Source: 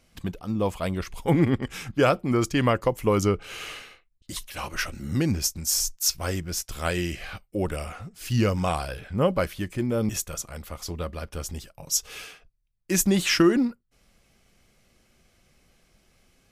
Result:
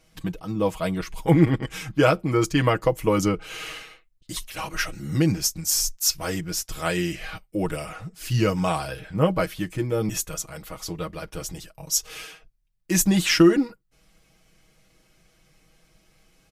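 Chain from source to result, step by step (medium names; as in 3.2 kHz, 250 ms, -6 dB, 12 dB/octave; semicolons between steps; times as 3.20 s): comb 6.3 ms, depth 76%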